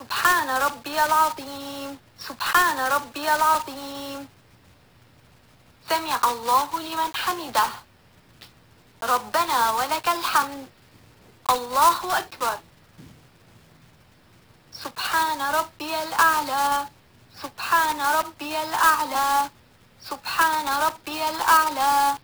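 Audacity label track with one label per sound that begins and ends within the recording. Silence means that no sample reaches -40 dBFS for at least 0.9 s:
5.860000	13.120000	sound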